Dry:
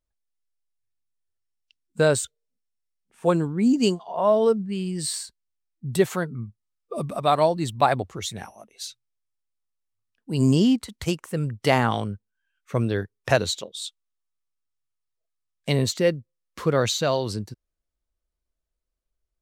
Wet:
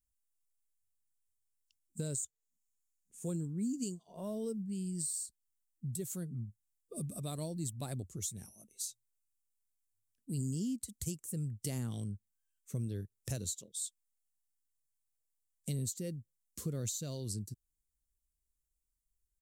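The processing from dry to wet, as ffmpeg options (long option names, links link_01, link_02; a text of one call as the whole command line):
ffmpeg -i in.wav -filter_complex "[0:a]asettb=1/sr,asplit=3[link_01][link_02][link_03];[link_01]atrim=end=2.054[link_04];[link_02]atrim=start=2.05:end=3.28,asetpts=PTS-STARTPTS,afade=type=in:duration=0.004:curve=qsin,afade=type=out:start_time=1.226:duration=0.004:curve=qsin,equalizer=frequency=6800:width=5.5:gain=8.5[link_05];[link_03]atrim=start=3.276[link_06];[link_04][link_05]acrossfade=duration=0.004:curve1=hsin:curve2=qsin[link_07];[link_07][link_06]acrossfade=duration=0.004:curve1=qsin:curve2=hsin,firequalizer=gain_entry='entry(140,0);entry(810,-24);entry(7400,9)':delay=0.05:min_phase=1,alimiter=limit=-16.5dB:level=0:latency=1:release=415,acompressor=threshold=-36dB:ratio=2,volume=-3.5dB" out.wav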